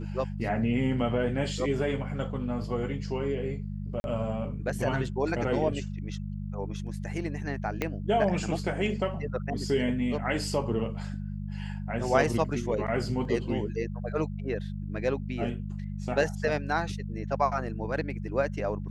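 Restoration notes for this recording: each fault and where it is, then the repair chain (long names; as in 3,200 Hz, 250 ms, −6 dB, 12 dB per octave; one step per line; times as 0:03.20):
mains hum 50 Hz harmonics 4 −35 dBFS
0:04.00–0:04.04: drop-out 41 ms
0:07.82: click −14 dBFS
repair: click removal
hum removal 50 Hz, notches 4
repair the gap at 0:04.00, 41 ms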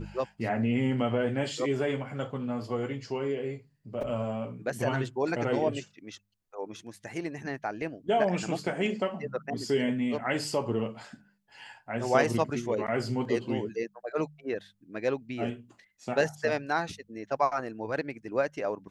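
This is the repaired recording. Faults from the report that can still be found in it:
0:07.82: click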